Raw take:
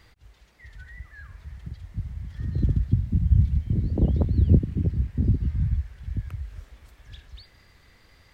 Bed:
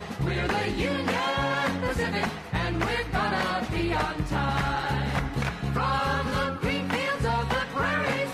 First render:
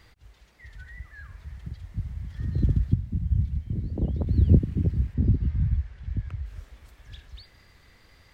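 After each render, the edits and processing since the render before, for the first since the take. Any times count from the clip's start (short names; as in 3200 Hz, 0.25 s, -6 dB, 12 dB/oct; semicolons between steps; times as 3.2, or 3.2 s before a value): 2.94–4.27 gain -5.5 dB; 5.14–6.46 air absorption 74 m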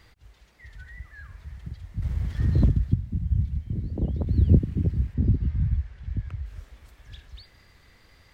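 2.02–2.69 sample leveller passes 2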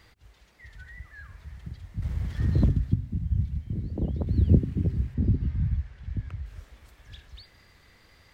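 low shelf 68 Hz -5 dB; de-hum 129.1 Hz, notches 3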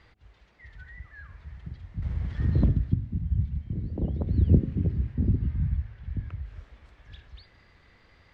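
Bessel low-pass 3100 Hz, order 2; de-hum 106.7 Hz, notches 7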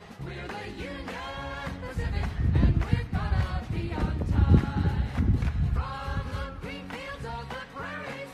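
add bed -10.5 dB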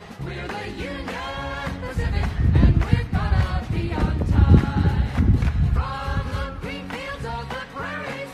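gain +6.5 dB; limiter -3 dBFS, peak gain reduction 1.5 dB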